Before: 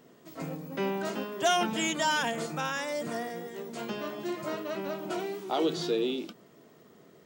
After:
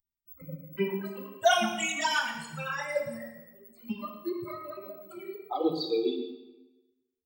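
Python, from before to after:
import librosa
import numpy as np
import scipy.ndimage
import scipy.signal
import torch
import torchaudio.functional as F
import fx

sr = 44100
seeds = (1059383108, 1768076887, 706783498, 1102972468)

p1 = fx.bin_expand(x, sr, power=3.0)
p2 = fx.rider(p1, sr, range_db=4, speed_s=2.0)
p3 = fx.phaser_stages(p2, sr, stages=12, low_hz=150.0, high_hz=1400.0, hz=3.9, feedback_pct=40)
p4 = p3 + fx.echo_single(p3, sr, ms=113, db=-12.5, dry=0)
p5 = fx.rev_plate(p4, sr, seeds[0], rt60_s=1.1, hf_ratio=0.85, predelay_ms=0, drr_db=4.0)
y = p5 * 10.0 ** (6.0 / 20.0)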